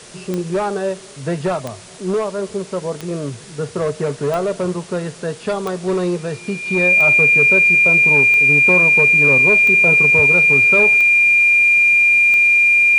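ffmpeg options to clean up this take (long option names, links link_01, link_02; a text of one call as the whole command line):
ffmpeg -i in.wav -af "adeclick=threshold=4,bandreject=frequency=2400:width=30,afwtdn=0.013" out.wav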